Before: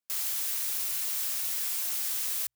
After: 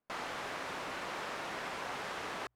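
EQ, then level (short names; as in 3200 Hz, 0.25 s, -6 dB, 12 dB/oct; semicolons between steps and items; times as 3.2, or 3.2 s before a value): LPF 1100 Hz 12 dB/oct; +15.0 dB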